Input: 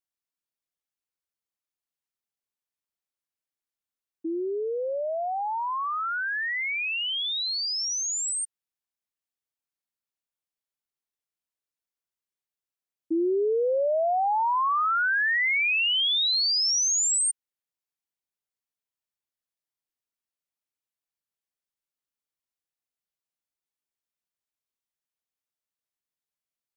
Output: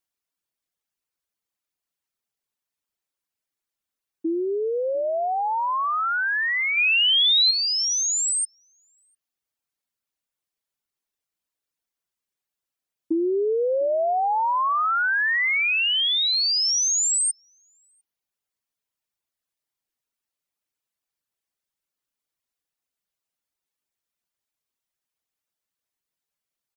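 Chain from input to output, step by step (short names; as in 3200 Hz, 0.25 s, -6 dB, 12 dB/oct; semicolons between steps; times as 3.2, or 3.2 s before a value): reverb removal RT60 0.7 s; compressor, threshold -27 dBFS, peak gain reduction 4.5 dB; 6.77–7.51 tilt +3 dB/oct; outdoor echo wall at 120 m, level -27 dB; gain +6.5 dB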